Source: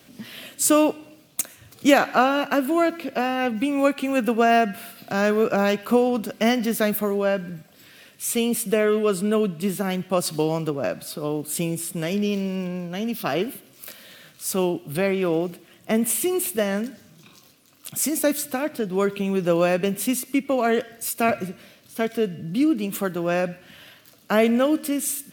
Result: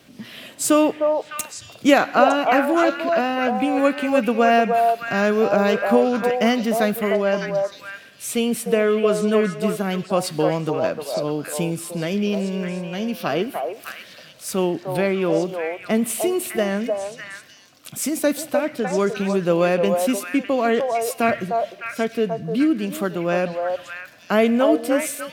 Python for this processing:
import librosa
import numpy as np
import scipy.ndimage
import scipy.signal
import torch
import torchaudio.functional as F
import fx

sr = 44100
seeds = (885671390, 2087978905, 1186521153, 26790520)

y = fx.high_shelf(x, sr, hz=9400.0, db=-9.5)
y = fx.echo_stepped(y, sr, ms=303, hz=700.0, octaves=1.4, feedback_pct=70, wet_db=0)
y = F.gain(torch.from_numpy(y), 1.5).numpy()